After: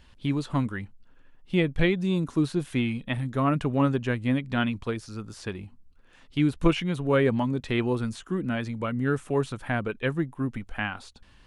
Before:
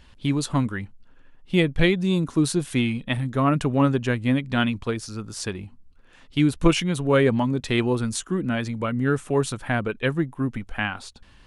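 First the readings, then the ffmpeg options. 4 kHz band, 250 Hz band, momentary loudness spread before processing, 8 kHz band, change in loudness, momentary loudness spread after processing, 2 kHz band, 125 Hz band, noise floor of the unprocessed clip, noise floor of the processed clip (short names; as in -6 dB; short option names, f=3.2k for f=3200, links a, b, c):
-6.5 dB, -3.5 dB, 10 LU, -14.0 dB, -3.5 dB, 10 LU, -4.0 dB, -3.5 dB, -52 dBFS, -56 dBFS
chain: -filter_complex "[0:a]acrossover=split=3500[a][b];[b]acompressor=threshold=-43dB:ratio=4:attack=1:release=60[c];[a][c]amix=inputs=2:normalize=0,volume=-3.5dB"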